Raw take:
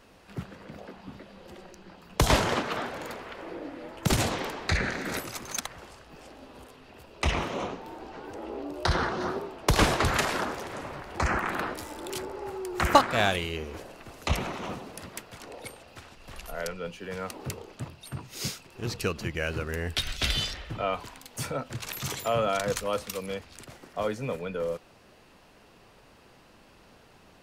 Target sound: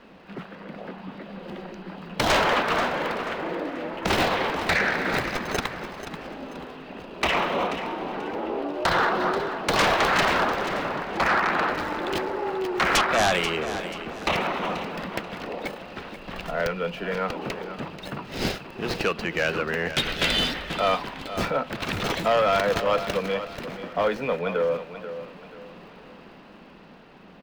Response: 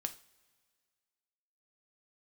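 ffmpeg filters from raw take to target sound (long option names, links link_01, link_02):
-filter_complex "[0:a]lowshelf=frequency=140:width_type=q:width=3:gain=-7,acrossover=split=430|4300[link_01][link_02][link_03];[link_01]acompressor=threshold=-44dB:ratio=6[link_04];[link_03]acrusher=samples=38:mix=1:aa=0.000001[link_05];[link_04][link_02][link_05]amix=inputs=3:normalize=0,aeval=exprs='0.0944*(abs(mod(val(0)/0.0944+3,4)-2)-1)':channel_layout=same,dynaudnorm=framelen=210:gausssize=13:maxgain=4dB,asoftclip=type=tanh:threshold=-21dB,aecho=1:1:485|970|1455:0.266|0.0878|0.029,volume=6dB"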